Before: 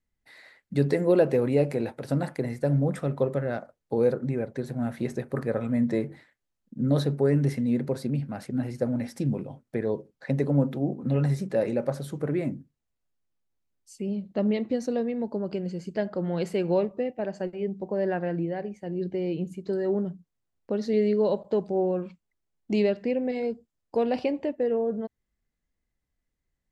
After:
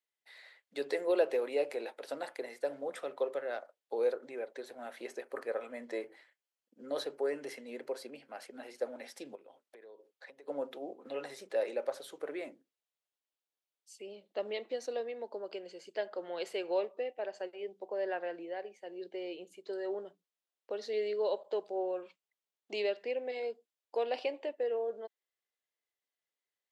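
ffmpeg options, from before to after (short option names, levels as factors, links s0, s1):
-filter_complex "[0:a]asettb=1/sr,asplit=3[s0][s1][s2];[s0]atrim=end=4.974[s3];[s1]atrim=start=4.97:end=8.54,asetpts=PTS-STARTPTS,afade=t=in:d=0.004:c=qsin,afade=t=out:st=3.566:d=0.004:c=qsin,bandreject=f=3700:w=8.8[s4];[s2]atrim=start=8.536[s5];[s3][s4]acrossfade=d=0.004:c1=hsin:c2=qsin[s6];[s6][s5]acrossfade=d=0.004:c1=qsin:c2=hsin,asettb=1/sr,asplit=3[s7][s8][s9];[s7]atrim=end=9.354[s10];[s8]atrim=start=9.35:end=10.48,asetpts=PTS-STARTPTS,afade=t=in:d=0.004:c=qsin,afade=t=out:st=1.126:d=0.004:c=qsin,acompressor=threshold=0.01:ratio=10:attack=3.2:release=140:knee=1:detection=peak[s11];[s9]atrim=start=10.476[s12];[s10][s11]acrossfade=d=0.004:c1=hsin:c2=qsin[s13];[s13][s12]acrossfade=d=0.004:c1=qsin:c2=hsin,highpass=f=420:w=0.5412,highpass=f=420:w=1.3066,equalizer=f=3300:w=1.6:g=6.5,volume=0.501"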